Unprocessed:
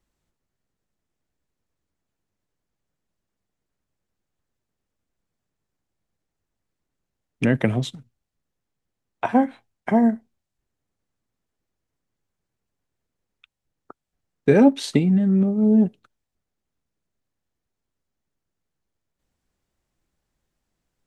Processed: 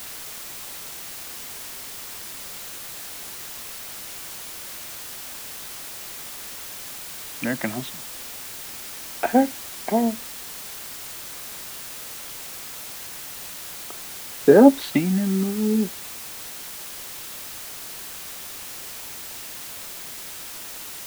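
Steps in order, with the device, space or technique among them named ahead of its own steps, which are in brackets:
shortwave radio (band-pass filter 290–2,600 Hz; amplitude tremolo 0.34 Hz, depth 49%; auto-filter notch saw up 0.27 Hz 400–2,600 Hz; white noise bed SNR 9 dB)
level +5.5 dB

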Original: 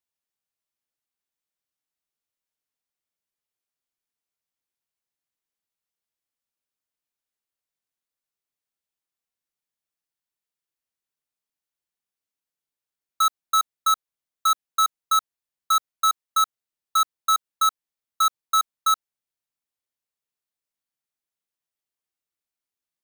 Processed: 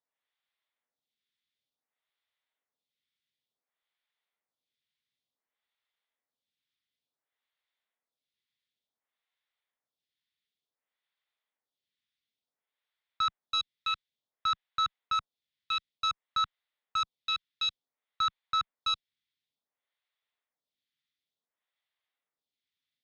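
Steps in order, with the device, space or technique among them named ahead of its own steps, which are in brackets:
vibe pedal into a guitar amplifier (phaser with staggered stages 0.56 Hz; tube saturation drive 34 dB, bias 0.6; loudspeaker in its box 100–4,600 Hz, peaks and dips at 180 Hz −6 dB, 340 Hz −8 dB, 2,000 Hz +6 dB, 3,500 Hz +9 dB)
level +7.5 dB

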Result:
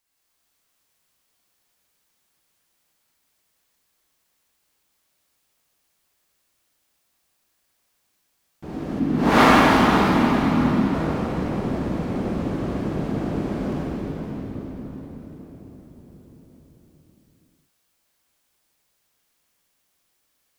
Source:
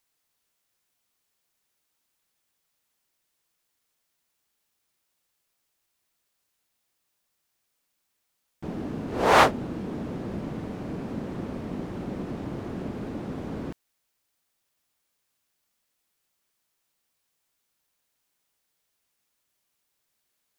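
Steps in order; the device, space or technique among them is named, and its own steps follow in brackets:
cathedral (convolution reverb RT60 5.3 s, pre-delay 33 ms, DRR −8.5 dB)
0:08.99–0:10.94: octave-band graphic EQ 250/500/8,000 Hz +9/−7/−4 dB
level −1.5 dB

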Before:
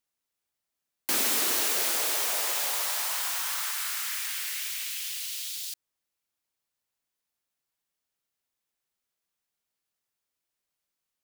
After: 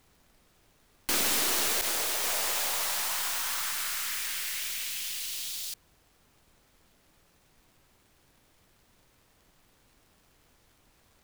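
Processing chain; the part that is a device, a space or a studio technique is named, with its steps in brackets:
0:01.81–0:02.24: downward expander −25 dBFS
record under a worn stylus (stylus tracing distortion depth 0.029 ms; surface crackle; pink noise bed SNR 30 dB)

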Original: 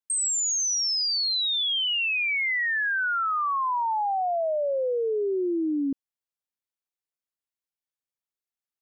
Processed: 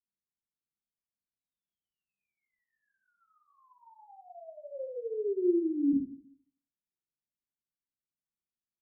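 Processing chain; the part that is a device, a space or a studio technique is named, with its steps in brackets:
next room (low-pass filter 330 Hz 24 dB per octave; convolution reverb RT60 0.55 s, pre-delay 4 ms, DRR −9.5 dB)
level −8 dB

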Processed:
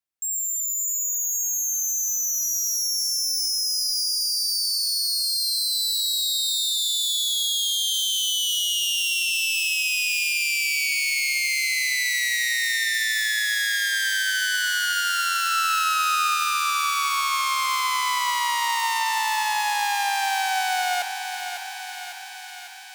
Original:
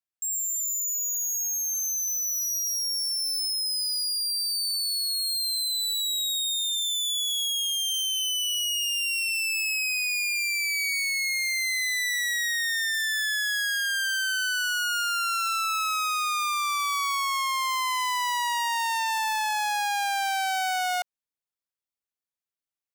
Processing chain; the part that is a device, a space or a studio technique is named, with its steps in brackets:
0:15.51–0:16.34: parametric band 800 Hz +4.5 dB 1.7 octaves
feedback echo with a high-pass in the loop 551 ms, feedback 71%, high-pass 670 Hz, level −7 dB
compressed reverb return (on a send at −8.5 dB: convolution reverb RT60 1.4 s, pre-delay 44 ms + downward compressor, threshold −30 dBFS, peak gain reduction 11 dB)
on the sum: level +2 dB

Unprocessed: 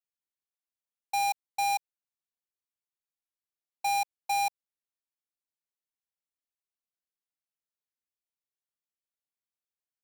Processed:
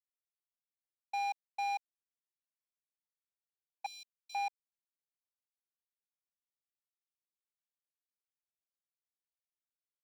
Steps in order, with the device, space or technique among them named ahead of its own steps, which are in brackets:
phone line with mismatched companding (band-pass filter 390–3,300 Hz; mu-law and A-law mismatch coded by A)
0:03.86–0:04.35: inverse Chebyshev high-pass filter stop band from 1,700 Hz, stop band 40 dB
level −5.5 dB

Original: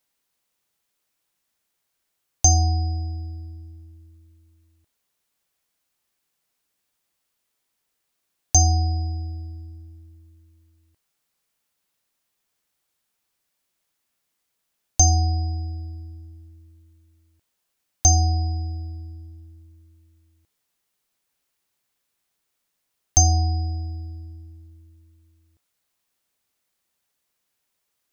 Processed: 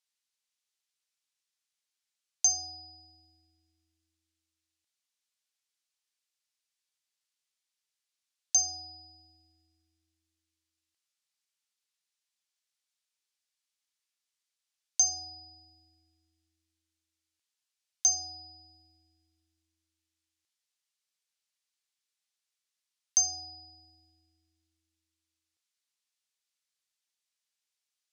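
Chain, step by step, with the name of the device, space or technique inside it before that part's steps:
piezo pickup straight into a mixer (low-pass filter 5,400 Hz 12 dB per octave; first difference)

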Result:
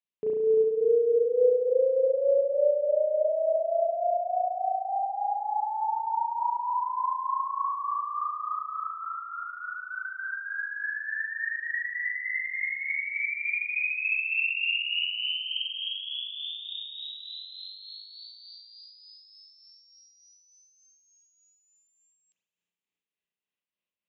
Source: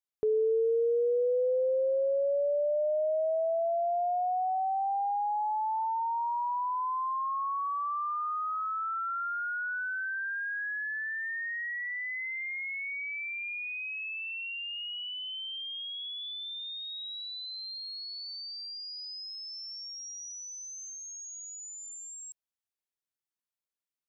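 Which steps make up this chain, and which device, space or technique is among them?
combo amplifier with spring reverb and tremolo (spring reverb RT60 3.3 s, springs 34 ms, chirp 65 ms, DRR −7.5 dB; amplitude tremolo 3.4 Hz, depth 45%; loudspeaker in its box 79–4,100 Hz, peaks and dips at 120 Hz −7 dB, 190 Hz +9 dB, 770 Hz −4 dB, 1,400 Hz −9 dB, 2,700 Hz +7 dB)
level −2 dB

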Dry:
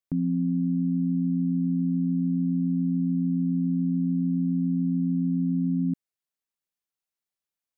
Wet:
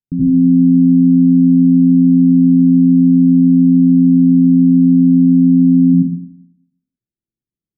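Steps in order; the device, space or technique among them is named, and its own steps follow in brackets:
next room (low-pass filter 340 Hz 24 dB per octave; convolution reverb RT60 0.70 s, pre-delay 72 ms, DRR −5.5 dB)
level +7.5 dB

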